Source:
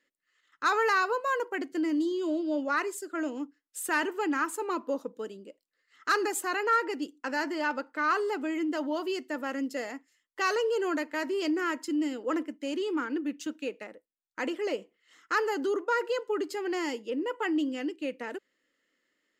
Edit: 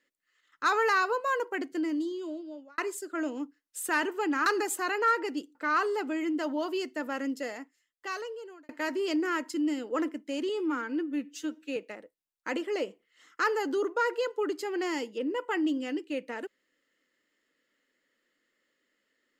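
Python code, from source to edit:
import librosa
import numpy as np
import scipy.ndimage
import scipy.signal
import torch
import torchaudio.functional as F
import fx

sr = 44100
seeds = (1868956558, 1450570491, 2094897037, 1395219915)

y = fx.edit(x, sr, fx.fade_out_span(start_s=1.65, length_s=1.13),
    fx.cut(start_s=4.46, length_s=1.65),
    fx.cut(start_s=7.2, length_s=0.69),
    fx.fade_out_span(start_s=9.6, length_s=1.43),
    fx.stretch_span(start_s=12.83, length_s=0.85, factor=1.5), tone=tone)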